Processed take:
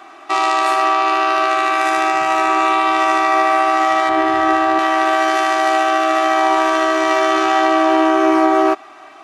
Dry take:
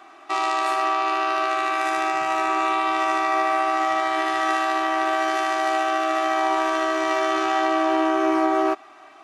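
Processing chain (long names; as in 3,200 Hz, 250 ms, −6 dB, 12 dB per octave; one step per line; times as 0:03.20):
0:04.09–0:04.79: spectral tilt −3 dB per octave
level +7 dB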